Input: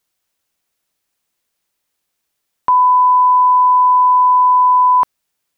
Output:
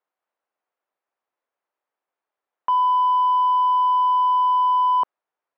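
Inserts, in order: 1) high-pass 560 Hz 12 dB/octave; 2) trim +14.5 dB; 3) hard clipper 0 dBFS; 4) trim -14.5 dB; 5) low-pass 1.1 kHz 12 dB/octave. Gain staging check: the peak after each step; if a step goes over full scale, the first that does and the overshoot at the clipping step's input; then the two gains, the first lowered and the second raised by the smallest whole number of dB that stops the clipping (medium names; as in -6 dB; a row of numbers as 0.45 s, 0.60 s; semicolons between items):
-7.0 dBFS, +7.5 dBFS, 0.0 dBFS, -14.5 dBFS, -14.5 dBFS; step 2, 7.5 dB; step 2 +6.5 dB, step 4 -6.5 dB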